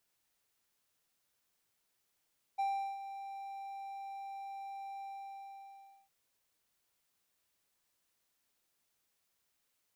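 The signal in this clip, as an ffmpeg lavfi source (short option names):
-f lavfi -i "aevalsrc='0.0398*(1-4*abs(mod(787*t+0.25,1)-0.5))':d=3.51:s=44100,afade=t=in:d=0.016,afade=t=out:st=0.016:d=0.377:silence=0.251,afade=t=out:st=2.44:d=1.07"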